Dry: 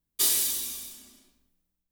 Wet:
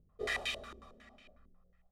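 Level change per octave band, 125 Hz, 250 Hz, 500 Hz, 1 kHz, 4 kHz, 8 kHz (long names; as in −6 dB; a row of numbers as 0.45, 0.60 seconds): can't be measured, −4.5 dB, +5.0 dB, +2.5 dB, −10.0 dB, −27.5 dB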